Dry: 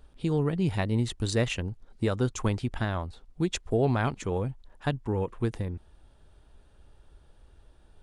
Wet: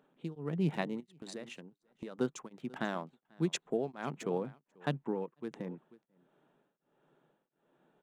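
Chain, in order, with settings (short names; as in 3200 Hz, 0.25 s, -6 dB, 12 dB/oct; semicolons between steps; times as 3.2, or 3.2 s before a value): Wiener smoothing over 9 samples; elliptic high-pass 150 Hz, stop band 40 dB; 1–2.19 compressor 10:1, threshold -38 dBFS, peak gain reduction 16.5 dB; echo 0.49 s -21.5 dB; beating tremolo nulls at 1.4 Hz; gain -2.5 dB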